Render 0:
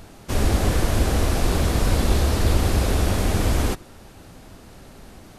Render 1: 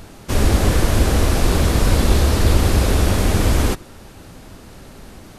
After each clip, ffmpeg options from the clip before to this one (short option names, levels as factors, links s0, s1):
-af "equalizer=f=720:t=o:w=0.32:g=-2.5,volume=1.68"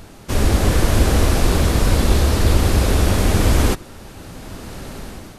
-af "dynaudnorm=f=310:g=5:m=3.76,volume=0.891"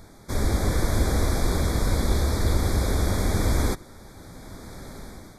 -af "asuperstop=centerf=2800:order=12:qfactor=3.1,volume=0.422"